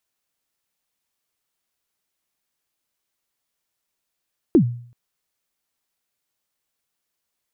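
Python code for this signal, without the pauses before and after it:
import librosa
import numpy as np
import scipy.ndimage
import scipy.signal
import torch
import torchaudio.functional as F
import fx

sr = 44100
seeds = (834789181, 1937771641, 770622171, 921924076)

y = fx.drum_kick(sr, seeds[0], length_s=0.38, level_db=-7.0, start_hz=380.0, end_hz=120.0, sweep_ms=88.0, decay_s=0.53, click=False)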